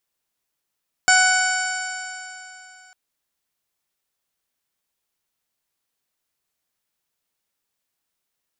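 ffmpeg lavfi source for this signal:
-f lavfi -i "aevalsrc='0.119*pow(10,-3*t/3.03)*sin(2*PI*740.74*t)+0.211*pow(10,-3*t/3.03)*sin(2*PI*1485.91*t)+0.075*pow(10,-3*t/3.03)*sin(2*PI*2239.89*t)+0.0398*pow(10,-3*t/3.03)*sin(2*PI*3006.99*t)+0.015*pow(10,-3*t/3.03)*sin(2*PI*3791.37*t)+0.0631*pow(10,-3*t/3.03)*sin(2*PI*4597.06*t)+0.0562*pow(10,-3*t/3.03)*sin(2*PI*5427.89*t)+0.0158*pow(10,-3*t/3.03)*sin(2*PI*6287.47*t)+0.126*pow(10,-3*t/3.03)*sin(2*PI*7179.22*t)+0.0335*pow(10,-3*t/3.03)*sin(2*PI*8106.29*t)':d=1.85:s=44100"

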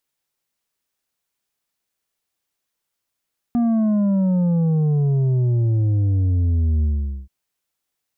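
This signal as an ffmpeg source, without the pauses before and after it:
-f lavfi -i "aevalsrc='0.158*clip((3.73-t)/0.45,0,1)*tanh(2*sin(2*PI*240*3.73/log(65/240)*(exp(log(65/240)*t/3.73)-1)))/tanh(2)':d=3.73:s=44100"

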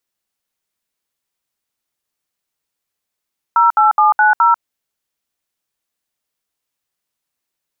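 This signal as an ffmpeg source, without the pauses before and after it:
-f lavfi -i "aevalsrc='0.299*clip(min(mod(t,0.21),0.143-mod(t,0.21))/0.002,0,1)*(eq(floor(t/0.21),0)*(sin(2*PI*941*mod(t,0.21))+sin(2*PI*1336*mod(t,0.21)))+eq(floor(t/0.21),1)*(sin(2*PI*852*mod(t,0.21))+sin(2*PI*1336*mod(t,0.21)))+eq(floor(t/0.21),2)*(sin(2*PI*852*mod(t,0.21))+sin(2*PI*1209*mod(t,0.21)))+eq(floor(t/0.21),3)*(sin(2*PI*852*mod(t,0.21))+sin(2*PI*1477*mod(t,0.21)))+eq(floor(t/0.21),4)*(sin(2*PI*941*mod(t,0.21))+sin(2*PI*1336*mod(t,0.21))))':d=1.05:s=44100"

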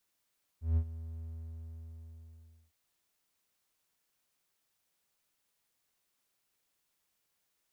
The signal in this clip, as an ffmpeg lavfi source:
-f lavfi -i "aevalsrc='0.0841*(1-4*abs(mod(81.2*t+0.25,1)-0.5))':d=2.11:s=44100,afade=t=in:d=0.157,afade=t=out:st=0.157:d=0.071:silence=0.158,afade=t=out:st=0.6:d=1.51"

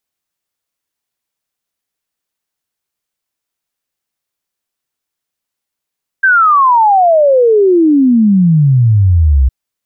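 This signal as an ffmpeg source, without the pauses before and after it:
-f lavfi -i "aevalsrc='0.562*clip(min(t,3.26-t)/0.01,0,1)*sin(2*PI*1600*3.26/log(62/1600)*(exp(log(62/1600)*t/3.26)-1))':d=3.26:s=44100"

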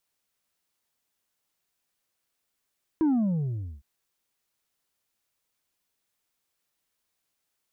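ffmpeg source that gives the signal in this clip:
-f lavfi -i "aevalsrc='0.1*clip((0.81-t)/0.79,0,1)*tanh(1.5*sin(2*PI*330*0.81/log(65/330)*(exp(log(65/330)*t/0.81)-1)))/tanh(1.5)':d=0.81:s=44100"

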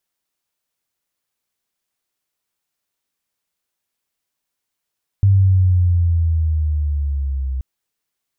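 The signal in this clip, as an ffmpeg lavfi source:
-f lavfi -i "aevalsrc='pow(10,(-8.5-11*t/2.38)/20)*sin(2*PI*99.4*2.38/(-7.5*log(2)/12)*(exp(-7.5*log(2)/12*t/2.38)-1))':d=2.38:s=44100"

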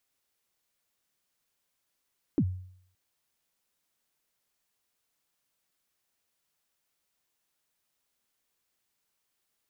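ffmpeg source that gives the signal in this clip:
-f lavfi -i "aevalsrc='0.112*pow(10,-3*t/0.63)*sin(2*PI*(350*0.062/log(92/350)*(exp(log(92/350)*min(t,0.062)/0.062)-1)+92*max(t-0.062,0)))':d=0.57:s=44100"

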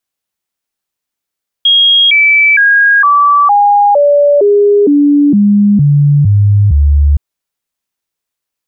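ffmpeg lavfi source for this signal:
-f lavfi -i "aevalsrc='0.631*clip(min(mod(t,0.46),0.46-mod(t,0.46))/0.005,0,1)*sin(2*PI*3270*pow(2,-floor(t/0.46)/2)*mod(t,0.46))':d=5.52:s=44100"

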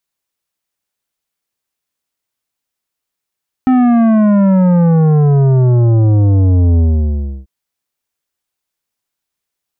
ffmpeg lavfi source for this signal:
-f lavfi -i "aevalsrc='0.398*clip((3.79-t)/0.67,0,1)*tanh(3.55*sin(2*PI*260*3.79/log(65/260)*(exp(log(65/260)*t/3.79)-1)))/tanh(3.55)':d=3.79:s=44100"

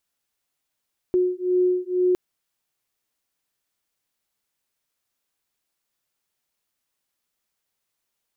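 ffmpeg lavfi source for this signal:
-f lavfi -i "aevalsrc='0.0841*(sin(2*PI*362*t)+sin(2*PI*364.1*t))':d=1.01:s=44100"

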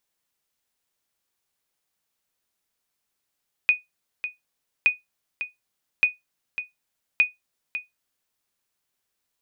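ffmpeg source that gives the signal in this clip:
-f lavfi -i "aevalsrc='0.335*(sin(2*PI*2480*mod(t,1.17))*exp(-6.91*mod(t,1.17)/0.17)+0.266*sin(2*PI*2480*max(mod(t,1.17)-0.55,0))*exp(-6.91*max(mod(t,1.17)-0.55,0)/0.17))':d=4.68:s=44100"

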